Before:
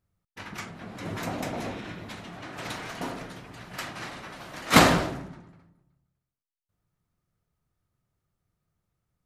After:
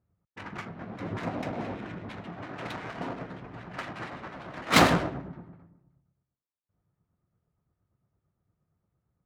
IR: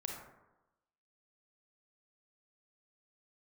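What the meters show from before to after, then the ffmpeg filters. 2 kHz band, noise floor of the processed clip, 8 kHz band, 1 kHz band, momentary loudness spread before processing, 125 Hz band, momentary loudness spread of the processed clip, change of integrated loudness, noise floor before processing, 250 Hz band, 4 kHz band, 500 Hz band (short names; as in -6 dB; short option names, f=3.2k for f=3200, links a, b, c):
-2.0 dB, under -85 dBFS, -5.0 dB, -2.0 dB, 21 LU, -1.5 dB, 19 LU, -3.5 dB, under -85 dBFS, -2.0 dB, -2.5 dB, -1.5 dB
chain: -filter_complex "[0:a]highpass=53,asplit=2[a][b];[b]acompressor=threshold=-42dB:ratio=6,volume=0dB[c];[a][c]amix=inputs=2:normalize=0,acrossover=split=1900[d][e];[d]aeval=exprs='val(0)*(1-0.5/2+0.5/2*cos(2*PI*8.7*n/s))':c=same[f];[e]aeval=exprs='val(0)*(1-0.5/2-0.5/2*cos(2*PI*8.7*n/s))':c=same[g];[f][g]amix=inputs=2:normalize=0,adynamicsmooth=sensitivity=4:basefreq=1.5k"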